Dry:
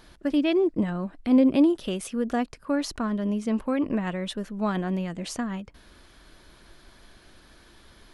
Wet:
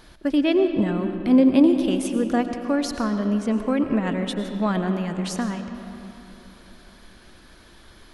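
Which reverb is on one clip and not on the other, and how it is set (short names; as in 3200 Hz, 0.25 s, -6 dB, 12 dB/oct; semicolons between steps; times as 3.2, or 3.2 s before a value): digital reverb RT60 3.3 s, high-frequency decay 0.5×, pre-delay 65 ms, DRR 7 dB; gain +3 dB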